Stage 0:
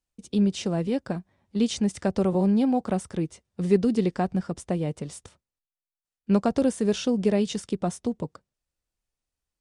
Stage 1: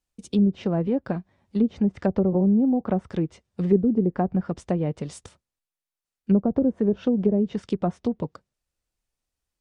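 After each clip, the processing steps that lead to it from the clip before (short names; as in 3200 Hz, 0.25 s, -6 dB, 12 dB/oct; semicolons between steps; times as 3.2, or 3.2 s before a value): treble ducked by the level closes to 440 Hz, closed at -18.5 dBFS; gain +2.5 dB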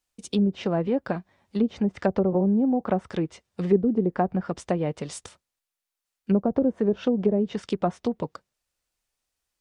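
low shelf 380 Hz -10 dB; gain +5 dB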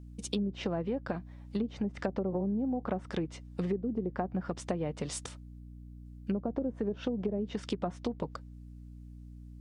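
compressor 6:1, threshold -30 dBFS, peak gain reduction 15.5 dB; hum 60 Hz, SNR 12 dB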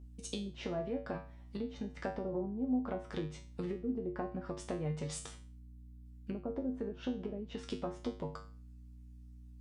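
resonator 51 Hz, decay 0.38 s, harmonics odd, mix 90%; gain +5.5 dB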